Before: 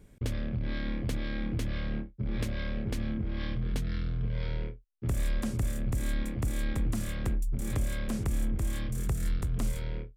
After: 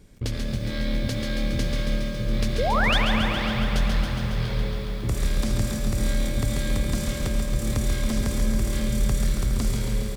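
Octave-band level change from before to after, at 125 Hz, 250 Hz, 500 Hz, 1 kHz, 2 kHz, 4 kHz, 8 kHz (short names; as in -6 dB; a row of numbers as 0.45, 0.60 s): +6.0, +7.5, +11.0, +16.5, +12.5, +15.0, +9.5 dB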